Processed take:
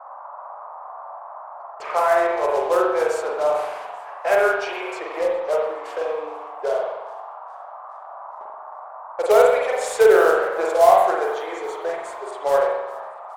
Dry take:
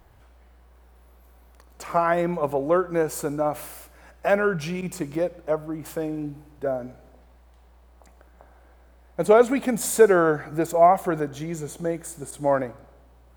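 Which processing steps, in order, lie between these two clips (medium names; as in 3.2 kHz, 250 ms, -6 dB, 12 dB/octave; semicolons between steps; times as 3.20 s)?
steep high-pass 380 Hz 72 dB/octave; in parallel at +1.5 dB: compression 6:1, threshold -34 dBFS, peak gain reduction 22 dB; on the sum: short-mantissa float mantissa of 2-bit; gate -44 dBFS, range -25 dB; band noise 620–1200 Hz -40 dBFS; level-controlled noise filter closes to 2.7 kHz, open at -14 dBFS; on a send: frequency-shifting echo 416 ms, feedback 59%, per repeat +120 Hz, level -20.5 dB; on the sum: spring tank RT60 1 s, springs 43 ms, chirp 80 ms, DRR -2.5 dB; trim -2 dB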